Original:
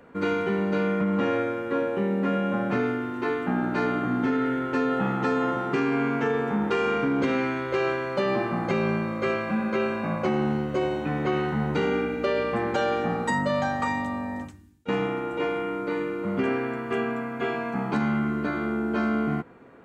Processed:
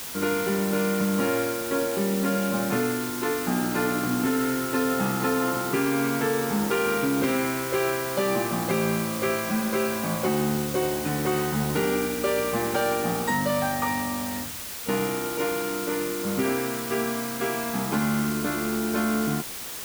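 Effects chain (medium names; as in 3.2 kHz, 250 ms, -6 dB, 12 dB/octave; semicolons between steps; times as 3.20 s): added noise white -36 dBFS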